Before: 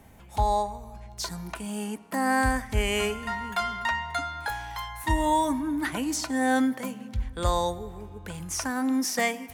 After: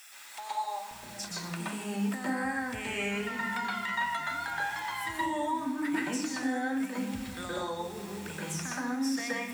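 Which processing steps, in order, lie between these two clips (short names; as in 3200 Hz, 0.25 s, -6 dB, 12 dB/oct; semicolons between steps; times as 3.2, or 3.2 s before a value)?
vibrato 2.6 Hz 56 cents; requantised 8-bit, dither triangular; HPF 1000 Hz 12 dB/oct, from 0.91 s 140 Hz; compressor 6:1, threshold -33 dBFS, peak gain reduction 13.5 dB; high shelf 7200 Hz -8.5 dB; reverb RT60 0.65 s, pre-delay 0.121 s, DRR -4.5 dB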